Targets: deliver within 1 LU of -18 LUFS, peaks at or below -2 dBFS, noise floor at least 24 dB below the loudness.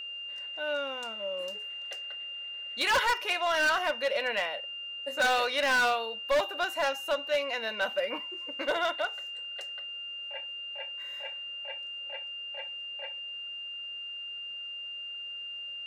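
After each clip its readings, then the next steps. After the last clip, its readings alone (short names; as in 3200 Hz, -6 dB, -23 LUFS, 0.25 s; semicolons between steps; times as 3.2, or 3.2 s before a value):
clipped 1.7%; flat tops at -22.0 dBFS; steady tone 2800 Hz; tone level -37 dBFS; loudness -31.5 LUFS; peak -22.0 dBFS; loudness target -18.0 LUFS
-> clip repair -22 dBFS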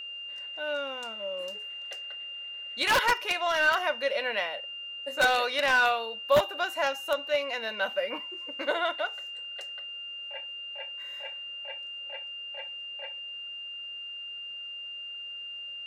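clipped 0.0%; steady tone 2800 Hz; tone level -37 dBFS
-> notch 2800 Hz, Q 30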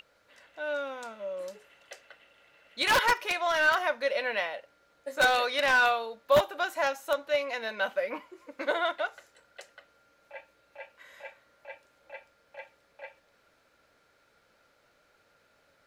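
steady tone none; loudness -28.0 LUFS; peak -12.5 dBFS; loudness target -18.0 LUFS
-> gain +10 dB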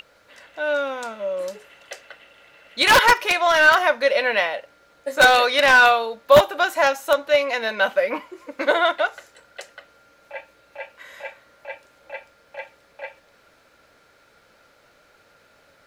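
loudness -18.0 LUFS; peak -2.5 dBFS; noise floor -57 dBFS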